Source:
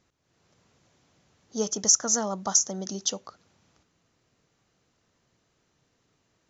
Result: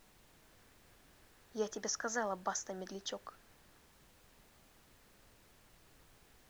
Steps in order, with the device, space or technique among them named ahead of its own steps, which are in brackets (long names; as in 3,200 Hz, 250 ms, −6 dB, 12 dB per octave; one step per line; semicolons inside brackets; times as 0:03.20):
horn gramophone (band-pass filter 290–3,100 Hz; parametric band 1,700 Hz +11.5 dB 0.39 octaves; tape wow and flutter; pink noise bed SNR 19 dB)
level −6.5 dB